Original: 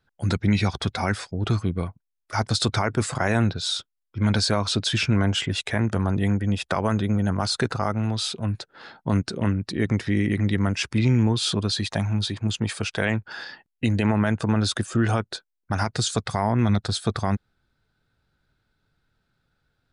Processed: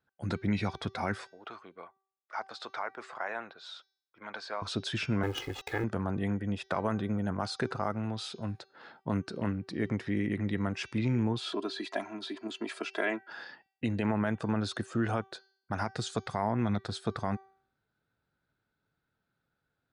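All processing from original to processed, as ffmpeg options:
ffmpeg -i in.wav -filter_complex "[0:a]asettb=1/sr,asplit=3[link_01][link_02][link_03];[link_01]atrim=end=1.314[link_04];[link_02]atrim=start=1.31:end=4.62,asetpts=PTS-STARTPTS,afade=type=in:duration=0.004:curve=qsin,afade=type=out:start_time=3.306:duration=0.004:curve=qsin,highpass=780,lowpass=6400,highshelf=frequency=3300:gain=-11.5[link_05];[link_03]atrim=start=4.616[link_06];[link_04][link_05]acrossfade=duration=0.004:curve1=hsin:curve2=qsin[link_07];[link_07][link_06]acrossfade=duration=0.004:curve1=qsin:curve2=hsin,asettb=1/sr,asplit=3[link_08][link_09][link_10];[link_08]atrim=end=5.234[link_11];[link_09]atrim=start=5.23:end=5.84,asetpts=PTS-STARTPTS,afade=type=in:duration=0.004:curve=qsin,afade=type=out:start_time=0.606:duration=0.004:curve=qsin,lowpass=4000,acrusher=bits=4:dc=4:mix=0:aa=0.000001,aecho=1:1:2.4:0.97,atrim=end_sample=26901[link_12];[link_10]atrim=start=5.836[link_13];[link_11][link_12]acrossfade=duration=0.004:curve1=hsin:curve2=qsin[link_14];[link_14][link_13]acrossfade=duration=0.004:curve1=qsin:curve2=hsin,asettb=1/sr,asplit=3[link_15][link_16][link_17];[link_15]atrim=end=11.404[link_18];[link_16]atrim=start=11.4:end=13.31,asetpts=PTS-STARTPTS,afade=type=in:duration=0.004:curve=qsin,afade=type=out:start_time=1.906:duration=0.004:curve=qsin,highpass=frequency=250:width=0.5412,highpass=frequency=250:width=1.3066,acrossover=split=3600[link_19][link_20];[link_20]acompressor=threshold=-35dB:ratio=4:attack=1:release=60[link_21];[link_19][link_21]amix=inputs=2:normalize=0,aecho=1:1:3:0.87,atrim=end_sample=84231[link_22];[link_17]atrim=start=13.306[link_23];[link_18][link_22]acrossfade=duration=0.004:curve1=hsin:curve2=qsin[link_24];[link_24][link_23]acrossfade=duration=0.004:curve1=qsin:curve2=hsin,highpass=frequency=190:poles=1,highshelf=frequency=3400:gain=-11.5,bandreject=frequency=386.4:width_type=h:width=4,bandreject=frequency=772.8:width_type=h:width=4,bandreject=frequency=1159.2:width_type=h:width=4,bandreject=frequency=1545.6:width_type=h:width=4,bandreject=frequency=1932:width_type=h:width=4,bandreject=frequency=2318.4:width_type=h:width=4,bandreject=frequency=2704.8:width_type=h:width=4,bandreject=frequency=3091.2:width_type=h:width=4,bandreject=frequency=3477.6:width_type=h:width=4,bandreject=frequency=3864:width_type=h:width=4,bandreject=frequency=4250.4:width_type=h:width=4,bandreject=frequency=4636.8:width_type=h:width=4,bandreject=frequency=5023.2:width_type=h:width=4,bandreject=frequency=5409.6:width_type=h:width=4,bandreject=frequency=5796:width_type=h:width=4,bandreject=frequency=6182.4:width_type=h:width=4,bandreject=frequency=6568.8:width_type=h:width=4,volume=-5.5dB" out.wav

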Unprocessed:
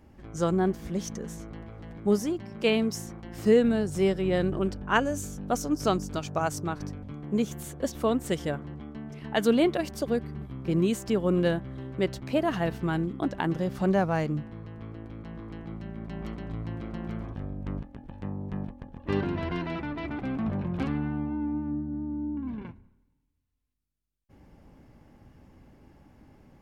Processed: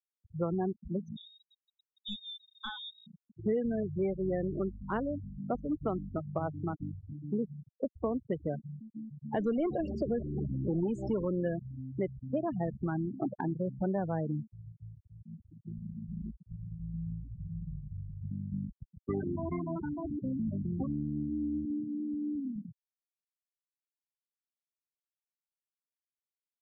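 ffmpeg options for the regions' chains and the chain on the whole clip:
ffmpeg -i in.wav -filter_complex "[0:a]asettb=1/sr,asplit=3[link_01][link_02][link_03];[link_01]atrim=end=1.164[link_04];[link_02]atrim=start=1.16:end=3.07,asetpts=PTS-STARTPTS,afade=type=in:duration=0.004:curve=qsin,afade=type=out:start_time=1.906:duration=0.004:curve=qsin,lowpass=frequency=3300:width_type=q:width=0.5098,lowpass=frequency=3300:width_type=q:width=0.6013,lowpass=frequency=3300:width_type=q:width=0.9,lowpass=frequency=3300:width_type=q:width=2.563,afreqshift=-3900,aeval=exprs='clip(val(0),-1,0.1)':channel_layout=same[link_05];[link_03]atrim=start=3.066[link_06];[link_04][link_05]acrossfade=duration=0.004:curve1=hsin:curve2=qsin[link_07];[link_07][link_06]acrossfade=duration=0.004:curve1=qsin:curve2=hsin,asettb=1/sr,asplit=3[link_08][link_09][link_10];[link_08]atrim=end=9.334[link_11];[link_09]atrim=start=9.33:end=11.25,asetpts=PTS-STARTPTS,afade=type=in:duration=0.004:curve=qsin,afade=type=out:start_time=1.916:duration=0.004:curve=qsin,aeval=exprs='val(0)+0.5*0.0531*sgn(val(0))':channel_layout=same,equalizer=frequency=6900:width_type=o:width=0.72:gain=3.5,bandreject=frequency=50:width_type=h:width=6,bandreject=frequency=100:width_type=h:width=6,bandreject=frequency=150:width_type=h:width=6[link_12];[link_10]atrim=start=11.246[link_13];[link_11][link_12]acrossfade=duration=0.004:curve1=hsin:curve2=qsin[link_14];[link_14][link_13]acrossfade=duration=0.004:curve1=qsin:curve2=hsin,asettb=1/sr,asplit=3[link_15][link_16][link_17];[link_15]atrim=end=16.314[link_18];[link_16]atrim=start=16.31:end=18.31,asetpts=PTS-STARTPTS,afade=type=in:duration=0.004:curve=qsin,afade=type=out:start_time=1.996:duration=0.004:curve=qsin,equalizer=frequency=440:width_type=o:width=3:gain=-13,asplit=2[link_19][link_20];[link_20]adelay=43,volume=-3dB[link_21];[link_19][link_21]amix=inputs=2:normalize=0,atrim=end_sample=88200,aecho=1:1:250|400|490|544|576.4:0.794|0.631|0.501|0.398|0.316,atrim=end_sample=88200[link_22];[link_17]atrim=start=18.306[link_23];[link_18][link_22]acrossfade=duration=0.004:curve1=hsin:curve2=qsin[link_24];[link_24][link_23]acrossfade=duration=0.004:curve1=qsin:curve2=hsin,asettb=1/sr,asplit=3[link_25][link_26][link_27];[link_25]atrim=end=21.654[link_28];[link_26]atrim=start=21.65:end=22.56,asetpts=PTS-STARTPTS,afade=type=in:duration=0.004:curve=qsin,afade=type=out:start_time=0.906:duration=0.004:curve=qsin,highpass=200,aeval=exprs='val(0)+0.00708*(sin(2*PI*60*n/s)+sin(2*PI*2*60*n/s)/2+sin(2*PI*3*60*n/s)/3+sin(2*PI*4*60*n/s)/4+sin(2*PI*5*60*n/s)/5)':channel_layout=same[link_29];[link_27]atrim=start=22.556[link_30];[link_28][link_29]acrossfade=duration=0.004:curve1=hsin:curve2=qsin[link_31];[link_31][link_30]acrossfade=duration=0.004:curve1=qsin:curve2=hsin,afftfilt=real='re*gte(hypot(re,im),0.0794)':imag='im*gte(hypot(re,im),0.0794)':win_size=1024:overlap=0.75,lowpass=1600,acrossover=split=110|580[link_32][link_33][link_34];[link_32]acompressor=threshold=-46dB:ratio=4[link_35];[link_33]acompressor=threshold=-32dB:ratio=4[link_36];[link_34]acompressor=threshold=-39dB:ratio=4[link_37];[link_35][link_36][link_37]amix=inputs=3:normalize=0" out.wav

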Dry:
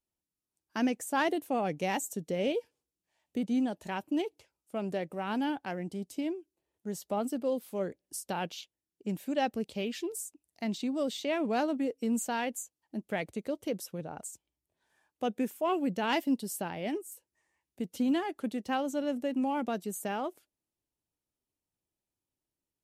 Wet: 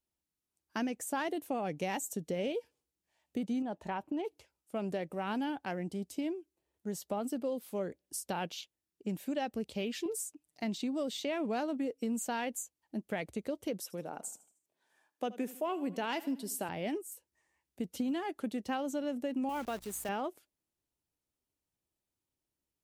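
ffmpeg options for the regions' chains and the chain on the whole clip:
ffmpeg -i in.wav -filter_complex "[0:a]asettb=1/sr,asplit=3[link_01][link_02][link_03];[link_01]atrim=end=3.624[link_04];[link_02]atrim=start=3.62:end=4.25,asetpts=PTS-STARTPTS,afade=type=in:duration=0.004:curve=qsin,afade=type=out:start_time=0.626:duration=0.004:curve=qsin,lowpass=frequency=2200:poles=1,equalizer=frequency=900:width=1.3:gain=5.5,acompressor=threshold=-31dB:ratio=3:attack=3.2:release=140:knee=1:detection=peak[link_05];[link_03]atrim=start=4.246[link_06];[link_04][link_05]acrossfade=duration=0.004:curve1=hsin:curve2=qsin[link_07];[link_07][link_06]acrossfade=duration=0.004:curve1=qsin:curve2=hsin,asettb=1/sr,asplit=3[link_08][link_09][link_10];[link_08]atrim=end=10.054[link_11];[link_09]atrim=start=10.05:end=10.63,asetpts=PTS-STARTPTS,afade=type=in:duration=0.004:curve=qsin,afade=type=out:start_time=0.576:duration=0.004:curve=qsin,highshelf=frequency=9000:gain=-5,aecho=1:1:6.7:0.97,atrim=end_sample=25578[link_12];[link_10]atrim=start=10.626[link_13];[link_11][link_12]acrossfade=duration=0.004:curve1=hsin:curve2=qsin[link_14];[link_14][link_13]acrossfade=duration=0.004:curve1=qsin:curve2=hsin,asettb=1/sr,asplit=3[link_15][link_16][link_17];[link_15]atrim=end=13.824[link_18];[link_16]atrim=start=13.82:end=16.69,asetpts=PTS-STARTPTS,afade=type=in:duration=0.004:curve=qsin,afade=type=out:start_time=2.866:duration=0.004:curve=qsin,highpass=220,aecho=1:1:77|154|231|308:0.106|0.0508|0.0244|0.0117,atrim=end_sample=126567[link_19];[link_17]atrim=start=16.686[link_20];[link_18][link_19]acrossfade=duration=0.004:curve1=hsin:curve2=qsin[link_21];[link_21][link_20]acrossfade=duration=0.004:curve1=qsin:curve2=hsin,asettb=1/sr,asplit=3[link_22][link_23][link_24];[link_22]atrim=end=19.494[link_25];[link_23]atrim=start=19.49:end=20.09,asetpts=PTS-STARTPTS,afade=type=in:duration=0.004:curve=qsin,afade=type=out:start_time=0.596:duration=0.004:curve=qsin,lowshelf=frequency=360:gain=-10,acrusher=bits=9:dc=4:mix=0:aa=0.000001,aeval=exprs='val(0)+0.000708*(sin(2*PI*60*n/s)+sin(2*PI*2*60*n/s)/2+sin(2*PI*3*60*n/s)/3+sin(2*PI*4*60*n/s)/4+sin(2*PI*5*60*n/s)/5)':channel_layout=same[link_26];[link_24]atrim=start=20.086[link_27];[link_25][link_26]acrossfade=duration=0.004:curve1=hsin:curve2=qsin[link_28];[link_28][link_27]acrossfade=duration=0.004:curve1=qsin:curve2=hsin,equalizer=frequency=68:width_type=o:width=0.21:gain=6.5,acompressor=threshold=-31dB:ratio=6" out.wav

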